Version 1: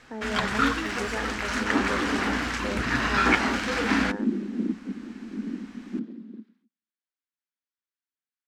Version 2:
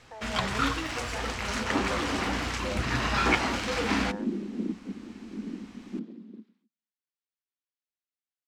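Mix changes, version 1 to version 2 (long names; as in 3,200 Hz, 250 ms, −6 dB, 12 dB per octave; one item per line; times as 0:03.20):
speech: add Chebyshev high-pass filter 490 Hz, order 6
master: add graphic EQ with 15 bands 100 Hz +6 dB, 250 Hz −6 dB, 1,600 Hz −7 dB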